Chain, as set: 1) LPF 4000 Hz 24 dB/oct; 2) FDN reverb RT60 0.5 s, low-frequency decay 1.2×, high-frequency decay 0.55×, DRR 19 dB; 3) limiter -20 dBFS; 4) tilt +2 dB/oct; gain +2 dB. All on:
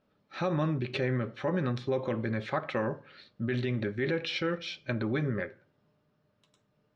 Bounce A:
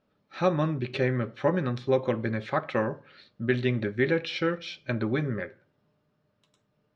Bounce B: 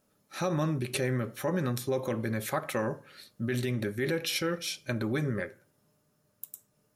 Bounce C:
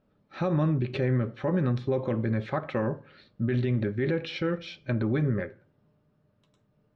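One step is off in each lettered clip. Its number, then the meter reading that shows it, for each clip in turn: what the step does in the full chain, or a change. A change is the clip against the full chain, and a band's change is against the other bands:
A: 3, mean gain reduction 1.5 dB; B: 1, 4 kHz band +2.5 dB; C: 4, 125 Hz band +6.0 dB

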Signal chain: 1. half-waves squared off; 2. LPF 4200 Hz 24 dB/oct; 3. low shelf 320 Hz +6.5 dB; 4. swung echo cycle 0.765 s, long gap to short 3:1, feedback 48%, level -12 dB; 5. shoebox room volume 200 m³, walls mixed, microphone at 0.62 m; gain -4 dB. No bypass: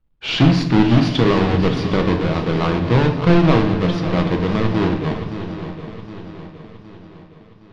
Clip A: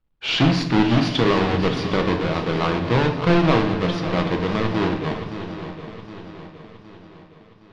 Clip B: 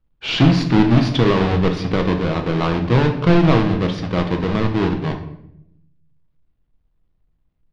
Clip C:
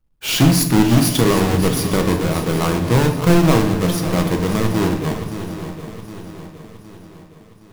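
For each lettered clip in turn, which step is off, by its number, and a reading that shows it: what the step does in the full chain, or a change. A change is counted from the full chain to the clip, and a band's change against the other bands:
3, 125 Hz band -4.5 dB; 4, momentary loudness spread change -10 LU; 2, 4 kHz band +2.0 dB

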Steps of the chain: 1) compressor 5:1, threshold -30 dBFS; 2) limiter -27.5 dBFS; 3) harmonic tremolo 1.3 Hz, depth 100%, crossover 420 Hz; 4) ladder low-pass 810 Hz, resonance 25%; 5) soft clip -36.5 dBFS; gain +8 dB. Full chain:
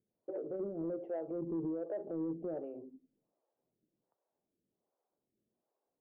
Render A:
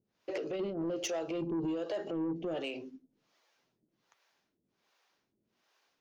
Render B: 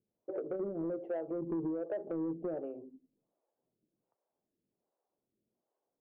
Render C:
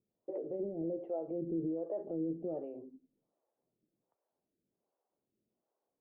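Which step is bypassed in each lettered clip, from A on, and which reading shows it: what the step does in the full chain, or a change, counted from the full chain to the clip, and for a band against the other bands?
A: 4, 1 kHz band +4.0 dB; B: 2, mean gain reduction 1.5 dB; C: 5, distortion -23 dB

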